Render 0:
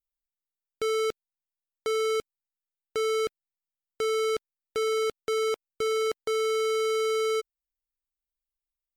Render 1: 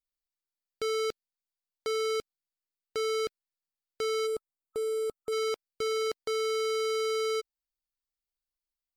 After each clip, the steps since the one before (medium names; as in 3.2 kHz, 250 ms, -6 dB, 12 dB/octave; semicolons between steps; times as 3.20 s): time-frequency box 4.27–5.32 s, 1.3–7.1 kHz -13 dB; peaking EQ 4.6 kHz +7 dB 0.39 oct; trim -3.5 dB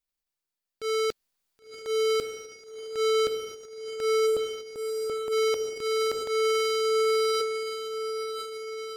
echo that smears into a reverb 1049 ms, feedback 58%, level -9 dB; transient shaper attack -10 dB, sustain +9 dB; trim +4 dB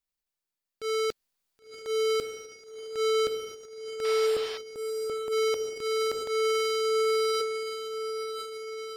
painted sound noise, 4.04–4.58 s, 530–5500 Hz -40 dBFS; trim -1.5 dB